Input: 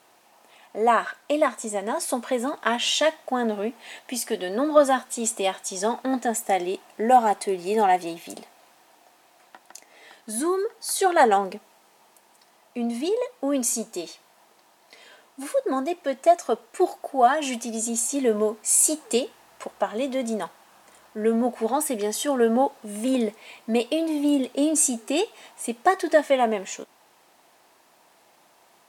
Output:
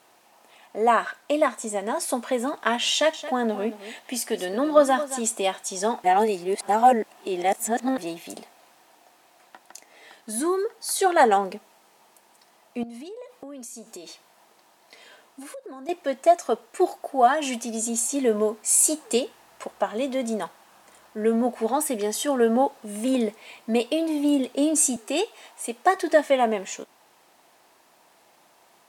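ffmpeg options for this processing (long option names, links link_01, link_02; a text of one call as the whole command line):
ffmpeg -i in.wav -filter_complex "[0:a]asettb=1/sr,asplit=3[link_01][link_02][link_03];[link_01]atrim=end=2.914[link_04];[link_02]atrim=start=2.91:end=5.22,asetpts=PTS-STARTPTS,afade=type=in:duration=0.004:curve=qsin,afade=type=out:start_time=2.306:duration=0.004:curve=qsin,aecho=1:1:223:0.211,atrim=end_sample=101871[link_05];[link_03]atrim=start=5.216[link_06];[link_04][link_05]acrossfade=duration=0.004:curve1=hsin:curve2=qsin[link_07];[link_07][link_06]acrossfade=duration=0.004:curve1=qsin:curve2=hsin,asettb=1/sr,asplit=3[link_08][link_09][link_10];[link_08]atrim=end=12.834[link_11];[link_09]atrim=start=12.83:end=15.89,asetpts=PTS-STARTPTS,afade=type=in:duration=0.004:curve=qsin,afade=type=out:start_time=3.056:duration=0.004:curve=qsin,acompressor=threshold=-36dB:ratio=12:attack=3.2:release=140:knee=1:detection=peak[link_12];[link_10]atrim=start=15.886[link_13];[link_11][link_12]acrossfade=duration=0.004:curve1=hsin:curve2=qsin[link_14];[link_14][link_13]acrossfade=duration=0.004:curve1=qsin:curve2=hsin,asettb=1/sr,asplit=3[link_15][link_16][link_17];[link_15]atrim=end=24.964[link_18];[link_16]atrim=start=24.96:end=25.96,asetpts=PTS-STARTPTS,afade=type=in:duration=0.004:curve=qsin,afade=type=out:start_time=0.996:duration=0.004:curve=qsin,highpass=300[link_19];[link_17]atrim=start=25.956[link_20];[link_18][link_19]acrossfade=duration=0.004:curve1=hsin:curve2=qsin[link_21];[link_21][link_20]acrossfade=duration=0.004:curve1=qsin:curve2=hsin,asplit=3[link_22][link_23][link_24];[link_22]atrim=end=6.042[link_25];[link_23]atrim=start=6.038:end=7.982,asetpts=PTS-STARTPTS,areverse[link_26];[link_24]atrim=start=7.978[link_27];[link_25][link_26]acrossfade=duration=0.004:curve1=hsin:curve2=hsin[link_28];[link_28][link_27]acrossfade=duration=0.004:curve1=hsin:curve2=hsin" out.wav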